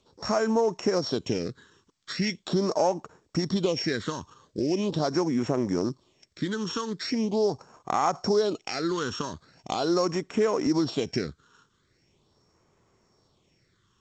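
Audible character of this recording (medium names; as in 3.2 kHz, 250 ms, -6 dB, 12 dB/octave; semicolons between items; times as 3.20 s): a buzz of ramps at a fixed pitch in blocks of 8 samples; phasing stages 8, 0.41 Hz, lowest notch 640–4400 Hz; G.722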